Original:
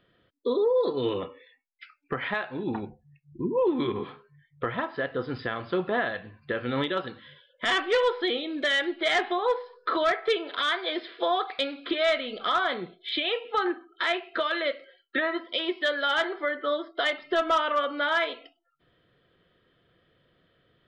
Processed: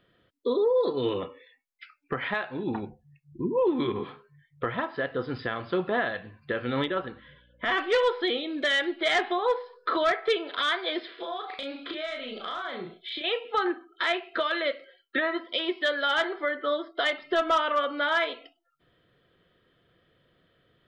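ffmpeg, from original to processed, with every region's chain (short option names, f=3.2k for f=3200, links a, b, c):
-filter_complex "[0:a]asettb=1/sr,asplit=3[a][b][c];[a]atrim=end=6.864[d];[b]atrim=start=6.86:end=7.78,asetpts=PTS-STARTPTS,afade=t=in:d=0.004:c=qsin,afade=t=out:st=0.916:d=0.004:c=qsin,lowpass=2.4k,aeval=exprs='val(0)+0.000891*(sin(2*PI*60*n/s)+sin(2*PI*2*60*n/s)/2+sin(2*PI*3*60*n/s)/3+sin(2*PI*4*60*n/s)/4+sin(2*PI*5*60*n/s)/5)':c=same[e];[c]atrim=start=7.776[f];[d][e]acrossfade=d=0.004:c1=hsin:c2=qsin[g];[g][f]acrossfade=d=0.004:c1=qsin:c2=hsin,asettb=1/sr,asplit=3[h][i][j];[h]atrim=end=11.144[k];[i]atrim=start=11.14:end=13.24,asetpts=PTS-STARTPTS,afade=t=in:d=0.004:c=qsin,afade=t=out:st=2.096:d=0.004:c=qsin,acompressor=threshold=-34dB:ratio=4:attack=3.2:release=140:knee=1:detection=peak,asplit=2[l][m];[m]adelay=36,volume=-3dB[n];[l][n]amix=inputs=2:normalize=0,atrim=end_sample=92610[o];[j]atrim=start=13.236[p];[k][o]acrossfade=d=0.004:c1=hsin:c2=qsin[q];[q][p]acrossfade=d=0.004:c1=qsin:c2=hsin"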